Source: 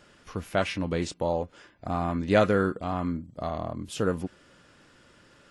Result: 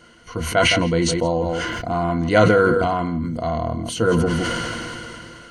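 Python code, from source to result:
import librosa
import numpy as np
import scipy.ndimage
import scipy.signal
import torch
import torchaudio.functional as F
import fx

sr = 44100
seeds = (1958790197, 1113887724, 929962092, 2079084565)

y = fx.ripple_eq(x, sr, per_octave=1.9, db=13)
y = y + 10.0 ** (-15.5 / 20.0) * np.pad(y, (int(164 * sr / 1000.0), 0))[:len(y)]
y = fx.sustainer(y, sr, db_per_s=20.0)
y = y * 10.0 ** (4.5 / 20.0)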